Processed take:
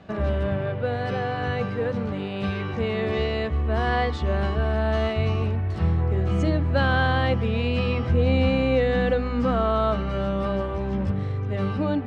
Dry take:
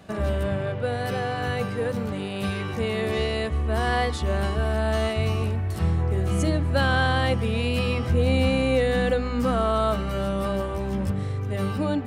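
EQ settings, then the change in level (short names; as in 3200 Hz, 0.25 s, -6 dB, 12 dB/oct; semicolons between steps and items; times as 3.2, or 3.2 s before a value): air absorption 160 m; +1.0 dB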